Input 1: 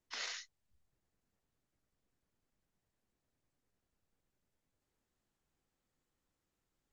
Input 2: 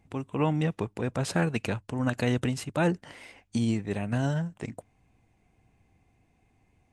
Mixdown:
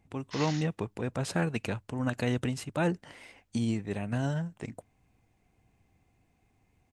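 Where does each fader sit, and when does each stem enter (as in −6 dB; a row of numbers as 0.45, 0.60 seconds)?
+2.0, −3.0 decibels; 0.20, 0.00 seconds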